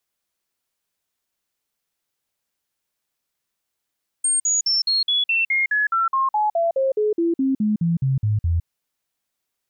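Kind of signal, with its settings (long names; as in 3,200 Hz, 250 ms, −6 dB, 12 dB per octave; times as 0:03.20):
stepped sweep 8,550 Hz down, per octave 3, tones 21, 0.16 s, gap 0.05 s −16.5 dBFS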